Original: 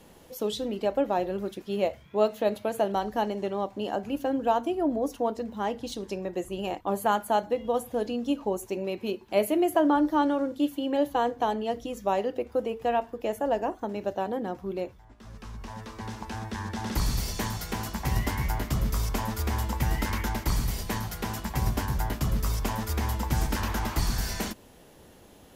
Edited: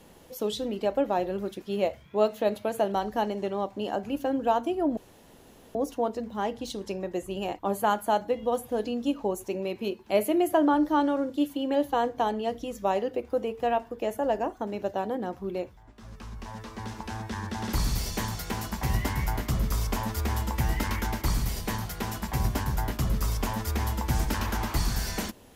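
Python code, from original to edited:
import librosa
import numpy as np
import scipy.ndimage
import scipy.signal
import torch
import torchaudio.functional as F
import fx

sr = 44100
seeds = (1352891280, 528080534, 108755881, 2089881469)

y = fx.edit(x, sr, fx.insert_room_tone(at_s=4.97, length_s=0.78), tone=tone)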